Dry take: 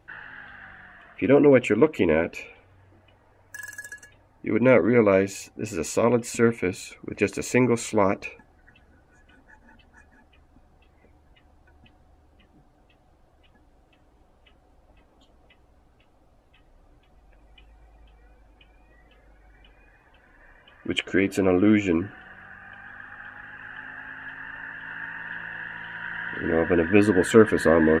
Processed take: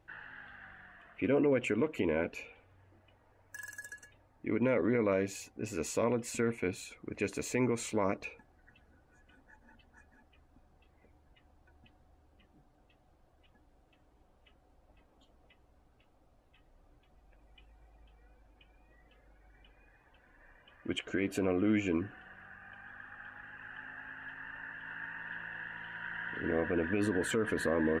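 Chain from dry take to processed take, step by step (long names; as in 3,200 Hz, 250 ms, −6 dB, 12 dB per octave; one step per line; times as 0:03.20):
brickwall limiter −13.5 dBFS, peak gain reduction 11.5 dB
level −7.5 dB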